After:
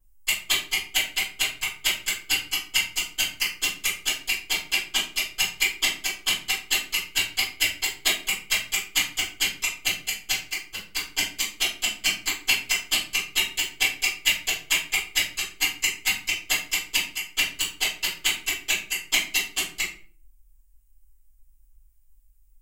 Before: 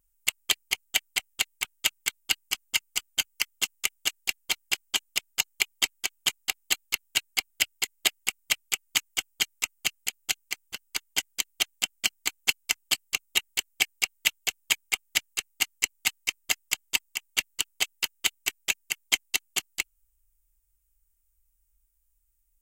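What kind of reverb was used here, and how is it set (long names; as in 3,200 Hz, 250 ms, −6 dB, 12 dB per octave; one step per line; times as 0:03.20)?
rectangular room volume 32 cubic metres, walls mixed, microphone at 2.6 metres
level −9 dB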